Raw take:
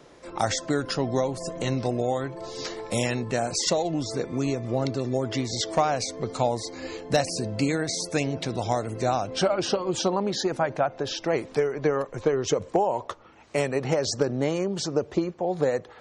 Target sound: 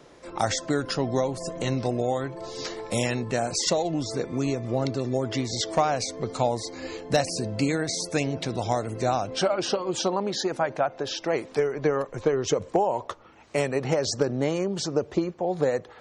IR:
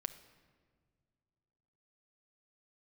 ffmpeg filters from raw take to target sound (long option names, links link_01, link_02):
-filter_complex "[0:a]asettb=1/sr,asplit=3[link_01][link_02][link_03];[link_01]atrim=end=9.354[link_04];[link_02]atrim=start=9.35:end=11.59,asetpts=PTS-STARTPTS,afade=type=in:duration=0.004:curve=qsin,afade=type=out:start_time=2.236:duration=0.004:curve=qsin,lowshelf=frequency=150:gain=-8[link_05];[link_03]atrim=start=11.586[link_06];[link_04][link_05]acrossfade=duration=0.004:curve1=hsin:curve2=qsin[link_07];[link_07][link_06]acrossfade=duration=0.004:curve1=qsin:curve2=hsin"